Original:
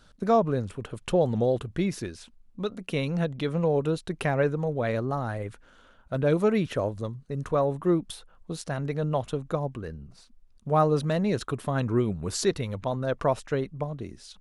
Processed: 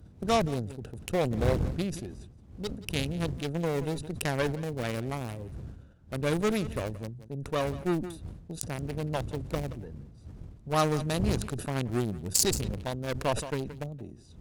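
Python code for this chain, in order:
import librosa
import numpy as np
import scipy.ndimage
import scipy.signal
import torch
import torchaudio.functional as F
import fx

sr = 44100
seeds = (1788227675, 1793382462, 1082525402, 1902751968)

p1 = fx.wiener(x, sr, points=41)
p2 = fx.dmg_wind(p1, sr, seeds[0], corner_hz=96.0, level_db=-34.0)
p3 = scipy.signal.sosfilt(scipy.signal.butter(2, 50.0, 'highpass', fs=sr, output='sos'), p2)
p4 = fx.high_shelf(p3, sr, hz=4400.0, db=9.5)
p5 = fx.cheby_harmonics(p4, sr, harmonics=(8,), levels_db=(-21,), full_scale_db=-8.5)
p6 = librosa.effects.preemphasis(p5, coef=0.8, zi=[0.0])
p7 = p6 + fx.echo_single(p6, sr, ms=176, db=-19.5, dry=0)
p8 = fx.sustainer(p7, sr, db_per_s=79.0)
y = p8 * 10.0 ** (8.5 / 20.0)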